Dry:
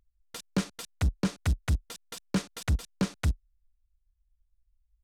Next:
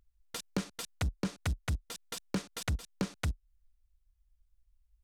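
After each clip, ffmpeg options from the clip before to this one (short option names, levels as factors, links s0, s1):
-af "acompressor=threshold=0.0178:ratio=2.5,volume=1.19"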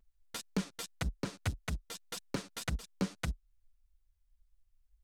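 -af "flanger=delay=4.5:depth=6.4:regen=-8:speed=1.8:shape=sinusoidal,volume=1.26"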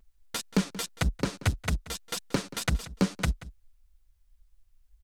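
-filter_complex "[0:a]asplit=2[s0][s1];[s1]adelay=180.8,volume=0.141,highshelf=f=4000:g=-4.07[s2];[s0][s2]amix=inputs=2:normalize=0,volume=2.66"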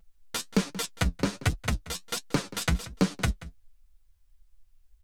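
-af "flanger=delay=5.8:depth=6.5:regen=50:speed=1.3:shape=triangular,volume=1.88"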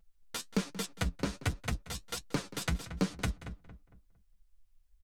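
-filter_complex "[0:a]asplit=2[s0][s1];[s1]adelay=228,lowpass=f=1800:p=1,volume=0.299,asplit=2[s2][s3];[s3]adelay=228,lowpass=f=1800:p=1,volume=0.36,asplit=2[s4][s5];[s5]adelay=228,lowpass=f=1800:p=1,volume=0.36,asplit=2[s6][s7];[s7]adelay=228,lowpass=f=1800:p=1,volume=0.36[s8];[s0][s2][s4][s6][s8]amix=inputs=5:normalize=0,volume=0.473"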